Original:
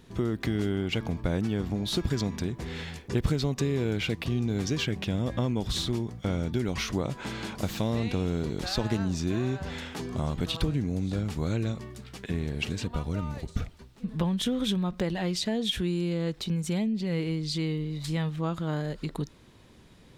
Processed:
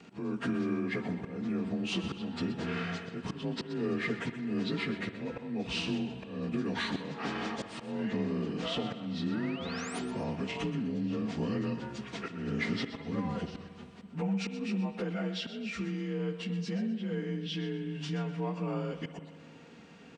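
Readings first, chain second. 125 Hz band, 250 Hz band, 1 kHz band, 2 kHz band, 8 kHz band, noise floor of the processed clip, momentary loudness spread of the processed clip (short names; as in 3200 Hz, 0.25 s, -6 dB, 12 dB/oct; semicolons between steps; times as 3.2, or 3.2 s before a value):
-8.5 dB, -3.5 dB, -2.0 dB, -0.5 dB, -10.0 dB, -52 dBFS, 7 LU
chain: inharmonic rescaling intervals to 88%; HPF 160 Hz 12 dB/oct; high shelf 7600 Hz -8 dB; comb 4.3 ms, depth 42%; dynamic EQ 2500 Hz, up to -5 dB, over -49 dBFS, Q 2.9; compressor 2.5:1, threshold -37 dBFS, peak gain reduction 9.5 dB; auto swell 0.243 s; vocal rider 2 s; painted sound rise, 9.31–9.99, 1300–9900 Hz -52 dBFS; on a send: thinning echo 0.125 s, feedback 31%, level -12.5 dB; on the sum: spring tank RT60 2.4 s, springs 57 ms, chirp 45 ms, DRR 11.5 dB; gain +4 dB; MP2 192 kbps 32000 Hz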